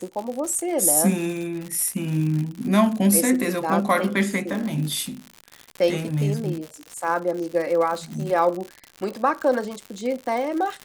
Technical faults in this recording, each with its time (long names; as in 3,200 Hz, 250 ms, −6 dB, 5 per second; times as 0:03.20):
surface crackle 120 per second −28 dBFS